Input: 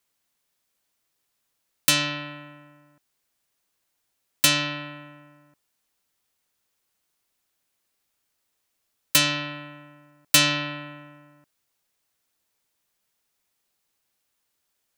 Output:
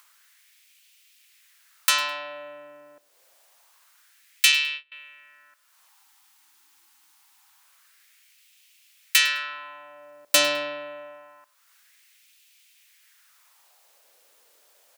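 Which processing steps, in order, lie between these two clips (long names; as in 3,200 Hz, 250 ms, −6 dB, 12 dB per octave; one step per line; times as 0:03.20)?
0:05.89–0:07.63: time-frequency box erased 360–760 Hz
in parallel at −3 dB: upward compression, threshold −31 dBFS
on the sum: parametric band 550 Hz +3 dB 0.34 octaves
on a send: repeating echo 104 ms, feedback 25%, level −20.5 dB
on the sum: auto-filter high-pass sine 0.26 Hz 460–2,600 Hz
0:04.52–0:04.92: noise gate −24 dBFS, range −28 dB
level −6.5 dB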